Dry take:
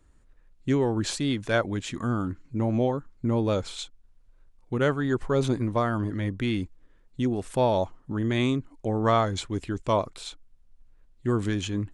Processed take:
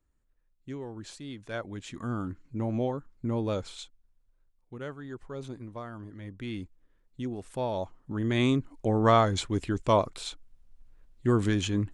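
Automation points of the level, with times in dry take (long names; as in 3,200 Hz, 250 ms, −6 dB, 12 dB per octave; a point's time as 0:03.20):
0:01.23 −15 dB
0:02.18 −5 dB
0:03.57 −5 dB
0:04.79 −15 dB
0:06.14 −15 dB
0:06.56 −8.5 dB
0:07.68 −8.5 dB
0:08.56 +1 dB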